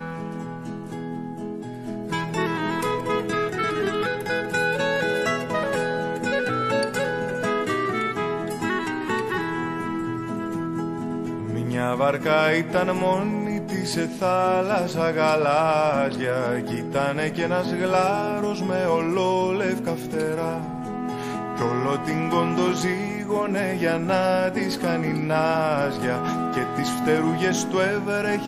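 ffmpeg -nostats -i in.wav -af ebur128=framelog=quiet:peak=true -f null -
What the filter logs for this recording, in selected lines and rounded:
Integrated loudness:
  I:         -24.1 LUFS
  Threshold: -34.1 LUFS
Loudness range:
  LRA:         4.0 LU
  Threshold: -44.0 LUFS
  LRA low:   -26.3 LUFS
  LRA high:  -22.3 LUFS
True peak:
  Peak:       -6.9 dBFS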